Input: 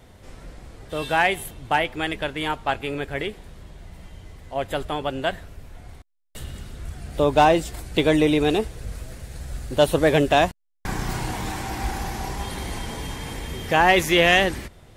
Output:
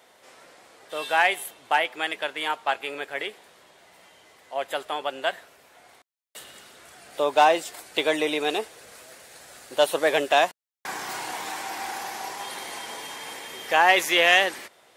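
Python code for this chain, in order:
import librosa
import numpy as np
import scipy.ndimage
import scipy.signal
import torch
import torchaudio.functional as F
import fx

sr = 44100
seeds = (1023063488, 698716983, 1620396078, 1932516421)

y = scipy.signal.sosfilt(scipy.signal.butter(2, 570.0, 'highpass', fs=sr, output='sos'), x)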